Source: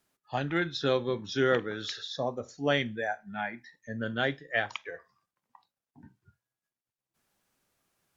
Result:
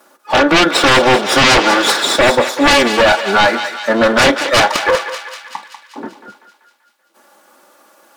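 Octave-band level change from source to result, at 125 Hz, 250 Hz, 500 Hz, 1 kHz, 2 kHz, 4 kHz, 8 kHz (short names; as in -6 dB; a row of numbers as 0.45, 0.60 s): +11.5 dB, +18.0 dB, +17.5 dB, +23.5 dB, +20.0 dB, +23.0 dB, n/a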